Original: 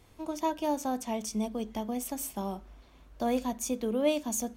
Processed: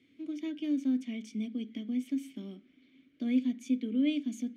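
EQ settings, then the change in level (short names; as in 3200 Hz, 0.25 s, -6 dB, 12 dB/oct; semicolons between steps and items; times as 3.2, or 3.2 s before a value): vowel filter i; HPF 86 Hz 24 dB/oct; +8.0 dB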